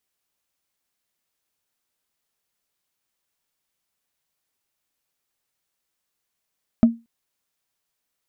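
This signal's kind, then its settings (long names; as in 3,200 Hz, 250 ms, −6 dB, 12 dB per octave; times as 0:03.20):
struck wood, length 0.23 s, lowest mode 231 Hz, decay 0.24 s, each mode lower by 12 dB, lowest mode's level −6 dB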